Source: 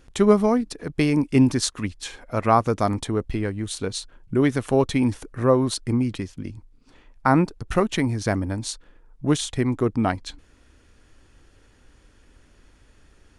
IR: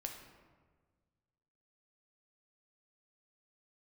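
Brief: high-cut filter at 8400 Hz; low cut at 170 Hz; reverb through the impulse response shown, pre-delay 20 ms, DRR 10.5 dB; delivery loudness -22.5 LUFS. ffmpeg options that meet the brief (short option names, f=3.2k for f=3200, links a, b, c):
-filter_complex "[0:a]highpass=170,lowpass=8.4k,asplit=2[a][b];[1:a]atrim=start_sample=2205,adelay=20[c];[b][c]afir=irnorm=-1:irlink=0,volume=-8.5dB[d];[a][d]amix=inputs=2:normalize=0,volume=1dB"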